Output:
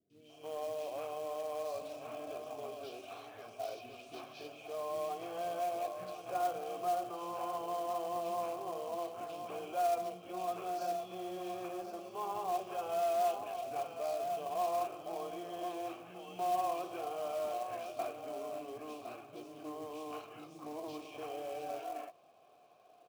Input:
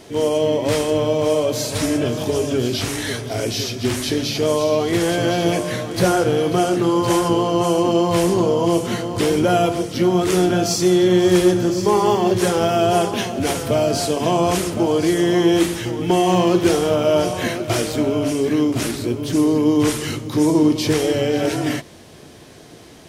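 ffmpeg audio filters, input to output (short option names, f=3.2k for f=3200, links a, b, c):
-filter_complex "[0:a]acrossover=split=350|980|1900[a][b][c][d];[b]alimiter=limit=-18dB:level=0:latency=1:release=37[e];[a][e][c][d]amix=inputs=4:normalize=0,asplit=3[f][g][h];[f]bandpass=f=730:t=q:w=8,volume=0dB[i];[g]bandpass=f=1.09k:t=q:w=8,volume=-6dB[j];[h]bandpass=f=2.44k:t=q:w=8,volume=-9dB[k];[i][j][k]amix=inputs=3:normalize=0,acrossover=split=270|2700[l][m][n];[n]adelay=100[o];[m]adelay=290[p];[l][p][o]amix=inputs=3:normalize=0,acrusher=bits=4:mode=log:mix=0:aa=0.000001,volume=-7.5dB"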